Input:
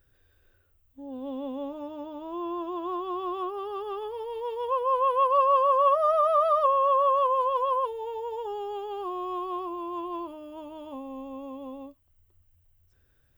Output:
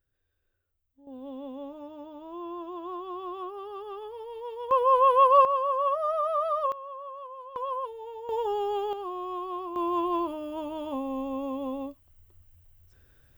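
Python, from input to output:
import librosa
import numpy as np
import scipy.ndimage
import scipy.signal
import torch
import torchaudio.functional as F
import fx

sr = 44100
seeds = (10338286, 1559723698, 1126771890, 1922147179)

y = fx.gain(x, sr, db=fx.steps((0.0, -14.0), (1.07, -5.0), (4.71, 4.0), (5.45, -5.0), (6.72, -18.0), (7.56, -6.0), (8.29, 5.0), (8.93, -2.0), (9.76, 6.5)))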